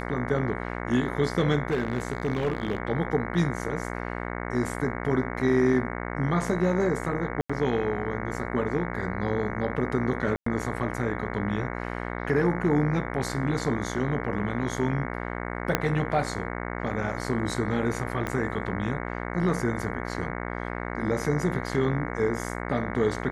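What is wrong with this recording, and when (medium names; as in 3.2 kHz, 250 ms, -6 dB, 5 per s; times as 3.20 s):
buzz 60 Hz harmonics 37 -33 dBFS
1.68–2.78 s: clipped -20.5 dBFS
7.41–7.50 s: dropout 85 ms
10.36–10.46 s: dropout 104 ms
15.75 s: pop -6 dBFS
18.27 s: pop -16 dBFS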